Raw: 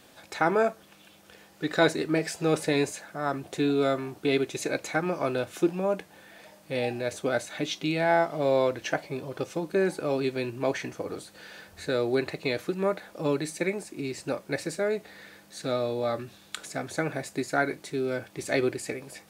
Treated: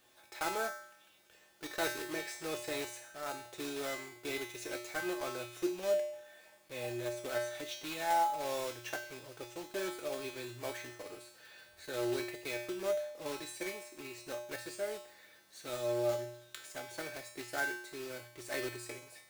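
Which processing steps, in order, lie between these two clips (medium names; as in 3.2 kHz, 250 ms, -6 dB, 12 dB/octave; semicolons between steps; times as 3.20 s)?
block-companded coder 3-bit; peaking EQ 140 Hz -10 dB 1.6 oct; feedback comb 120 Hz, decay 0.68 s, harmonics odd, mix 90%; trim +4.5 dB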